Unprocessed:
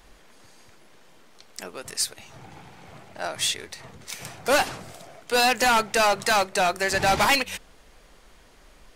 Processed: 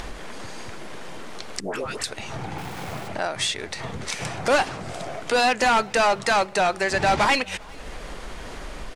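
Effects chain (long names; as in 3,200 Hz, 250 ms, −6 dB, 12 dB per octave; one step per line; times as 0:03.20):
0:01.60–0:02.04: all-pass dispersion highs, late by 139 ms, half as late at 860 Hz
background noise violet −61 dBFS
low-pass filter 10,000 Hz 24 dB per octave
high-shelf EQ 4,000 Hz −7.5 dB
0:02.58–0:03.08: centre clipping without the shift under −49 dBFS
upward compression, threshold −21 dBFS
far-end echo of a speakerphone 400 ms, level −21 dB
level +1.5 dB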